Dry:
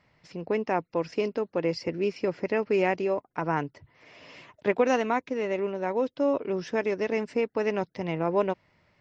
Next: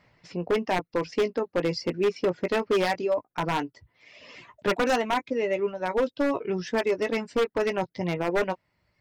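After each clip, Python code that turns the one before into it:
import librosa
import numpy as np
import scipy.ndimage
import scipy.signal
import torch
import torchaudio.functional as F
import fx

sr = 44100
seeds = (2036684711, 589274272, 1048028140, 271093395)

y = fx.dereverb_blind(x, sr, rt60_s=1.4)
y = fx.doubler(y, sr, ms=17.0, db=-9)
y = 10.0 ** (-20.5 / 20.0) * (np.abs((y / 10.0 ** (-20.5 / 20.0) + 3.0) % 4.0 - 2.0) - 1.0)
y = y * 10.0 ** (3.5 / 20.0)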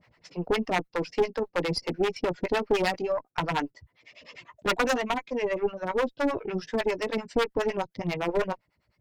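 y = fx.harmonic_tremolo(x, sr, hz=9.9, depth_pct=100, crossover_hz=550.0)
y = fx.tube_stage(y, sr, drive_db=21.0, bias=0.75)
y = y * 10.0 ** (8.0 / 20.0)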